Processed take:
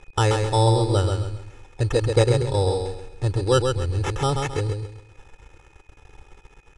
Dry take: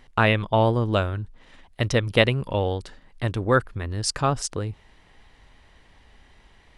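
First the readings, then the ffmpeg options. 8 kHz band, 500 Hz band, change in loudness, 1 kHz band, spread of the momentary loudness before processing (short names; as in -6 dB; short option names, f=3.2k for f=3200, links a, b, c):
-0.5 dB, +2.0 dB, +1.5 dB, 0.0 dB, 12 LU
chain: -af "acrusher=bits=7:mix=0:aa=0.000001,equalizer=f=2.5k:t=o:w=1.2:g=-13,acrusher=samples=10:mix=1:aa=0.000001,aeval=exprs='val(0)+0.00178*sin(2*PI*2500*n/s)':c=same,aecho=1:1:2.3:0.8,aecho=1:1:133|266|399|532:0.562|0.174|0.054|0.0168,aresample=22050,aresample=44100,lowshelf=f=250:g=4.5,volume=-2dB"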